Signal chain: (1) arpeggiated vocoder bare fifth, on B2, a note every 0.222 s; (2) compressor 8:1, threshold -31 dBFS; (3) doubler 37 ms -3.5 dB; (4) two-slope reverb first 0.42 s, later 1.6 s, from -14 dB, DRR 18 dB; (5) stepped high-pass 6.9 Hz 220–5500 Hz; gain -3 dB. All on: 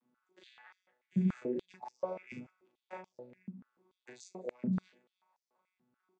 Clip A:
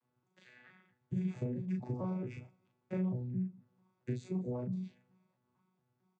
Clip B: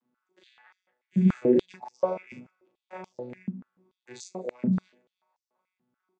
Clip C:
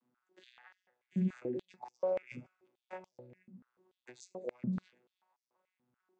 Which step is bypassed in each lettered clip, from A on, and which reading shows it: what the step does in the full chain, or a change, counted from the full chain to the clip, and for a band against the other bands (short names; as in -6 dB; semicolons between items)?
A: 5, crest factor change -6.0 dB; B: 2, mean gain reduction 9.0 dB; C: 3, 500 Hz band +4.5 dB